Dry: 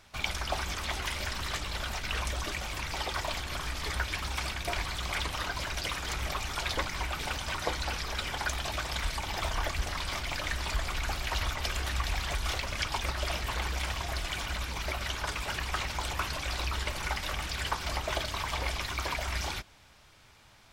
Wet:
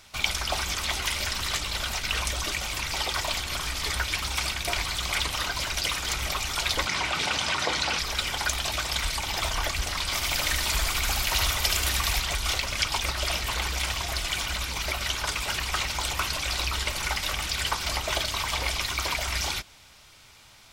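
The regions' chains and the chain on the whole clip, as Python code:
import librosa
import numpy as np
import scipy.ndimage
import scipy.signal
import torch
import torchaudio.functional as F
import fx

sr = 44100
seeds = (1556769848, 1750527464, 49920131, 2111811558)

y = fx.chain(x, sr, fx.highpass(hz=120.0, slope=12),
    fx.air_absorb(metres=62.0),
    fx.env_flatten(amount_pct=50), at=(6.87, 7.99))
y = fx.chain(y, sr, fx.high_shelf(hz=11000.0, db=11.5),
    fx.echo_single(ms=74, db=-4.0), at=(10.14, 12.2))
y = fx.high_shelf(y, sr, hz=2100.0, db=8.5)
y = fx.notch(y, sr, hz=1700.0, q=15.0)
y = y * librosa.db_to_amplitude(1.5)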